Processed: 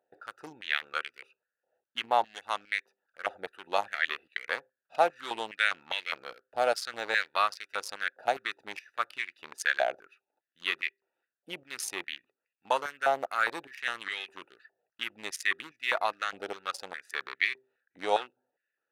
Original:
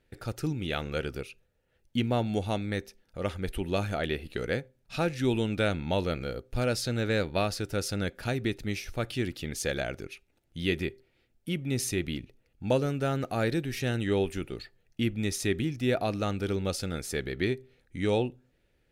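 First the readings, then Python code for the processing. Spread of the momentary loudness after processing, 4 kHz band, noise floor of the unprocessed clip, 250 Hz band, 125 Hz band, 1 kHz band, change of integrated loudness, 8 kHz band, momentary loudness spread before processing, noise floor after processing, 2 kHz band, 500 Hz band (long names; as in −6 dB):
12 LU, +1.0 dB, −71 dBFS, −20.0 dB, below −30 dB, +6.5 dB, −1.0 dB, −4.5 dB, 9 LU, below −85 dBFS, +6.0 dB, −4.5 dB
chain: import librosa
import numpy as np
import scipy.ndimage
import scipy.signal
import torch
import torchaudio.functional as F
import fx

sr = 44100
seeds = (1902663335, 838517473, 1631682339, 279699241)

y = fx.wiener(x, sr, points=41)
y = fx.notch(y, sr, hz=2400.0, q=24.0)
y = fx.filter_held_highpass(y, sr, hz=4.9, low_hz=740.0, high_hz=2100.0)
y = y * 10.0 ** (2.0 / 20.0)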